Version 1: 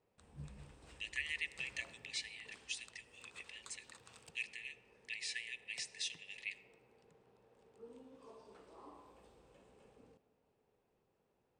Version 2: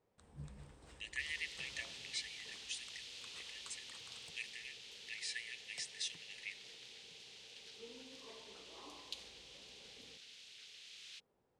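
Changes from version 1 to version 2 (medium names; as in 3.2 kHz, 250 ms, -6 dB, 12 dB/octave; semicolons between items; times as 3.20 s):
second sound: unmuted; master: add peaking EQ 2.6 kHz -6 dB 0.22 oct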